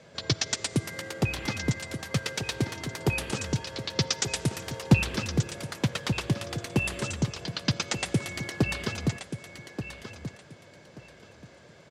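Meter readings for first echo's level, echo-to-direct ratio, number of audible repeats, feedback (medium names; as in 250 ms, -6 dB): -10.0 dB, -10.0 dB, 2, 22%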